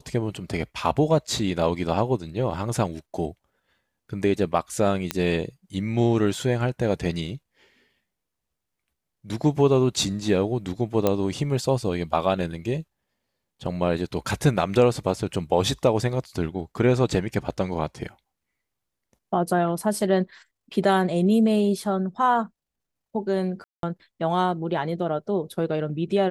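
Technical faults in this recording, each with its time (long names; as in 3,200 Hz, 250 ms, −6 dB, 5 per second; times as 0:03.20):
0:05.11: click −8 dBFS
0:11.07: click −8 dBFS
0:23.64–0:23.83: drop-out 192 ms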